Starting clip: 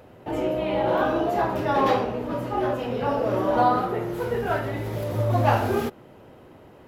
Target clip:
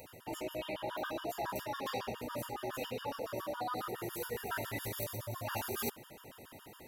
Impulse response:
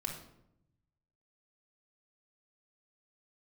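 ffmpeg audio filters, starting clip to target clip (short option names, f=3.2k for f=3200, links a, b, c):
-af "areverse,acompressor=threshold=-31dB:ratio=8,areverse,crystalizer=i=8.5:c=0,afftfilt=real='re*gt(sin(2*PI*7.2*pts/sr)*(1-2*mod(floor(b*sr/1024/930),2)),0)':imag='im*gt(sin(2*PI*7.2*pts/sr)*(1-2*mod(floor(b*sr/1024/930),2)),0)':win_size=1024:overlap=0.75,volume=-5dB"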